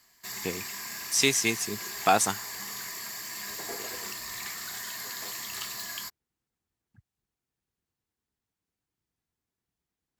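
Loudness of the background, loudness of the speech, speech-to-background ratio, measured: -35.5 LUFS, -25.5 LUFS, 10.0 dB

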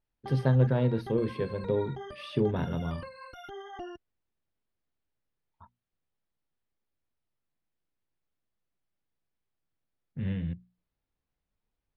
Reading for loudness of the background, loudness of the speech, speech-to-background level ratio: -45.0 LUFS, -30.0 LUFS, 15.0 dB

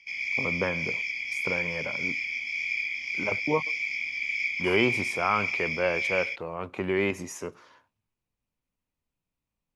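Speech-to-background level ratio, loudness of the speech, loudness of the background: -2.0 dB, -30.5 LUFS, -28.5 LUFS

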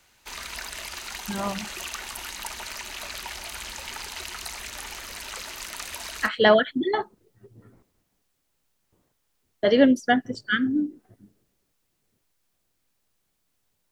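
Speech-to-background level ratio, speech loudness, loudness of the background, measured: 11.5 dB, -23.0 LUFS, -34.5 LUFS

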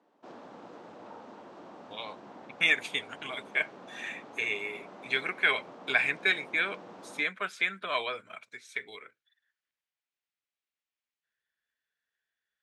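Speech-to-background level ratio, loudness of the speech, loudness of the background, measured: 19.0 dB, -30.0 LUFS, -49.0 LUFS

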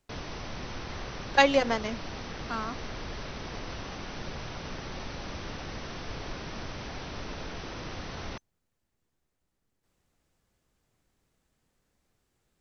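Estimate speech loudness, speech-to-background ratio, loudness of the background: -27.0 LUFS, 12.5 dB, -39.5 LUFS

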